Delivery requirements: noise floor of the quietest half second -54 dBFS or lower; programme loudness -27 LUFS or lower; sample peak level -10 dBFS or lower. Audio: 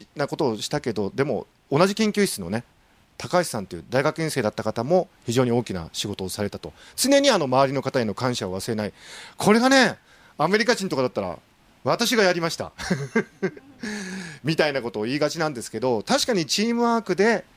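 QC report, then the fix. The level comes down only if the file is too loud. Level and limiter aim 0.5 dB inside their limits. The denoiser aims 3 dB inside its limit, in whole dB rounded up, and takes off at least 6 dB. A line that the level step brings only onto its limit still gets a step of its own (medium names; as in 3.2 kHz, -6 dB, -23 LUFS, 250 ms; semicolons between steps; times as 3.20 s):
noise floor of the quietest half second -58 dBFS: pass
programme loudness -23.0 LUFS: fail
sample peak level -4.0 dBFS: fail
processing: trim -4.5 dB; peak limiter -10.5 dBFS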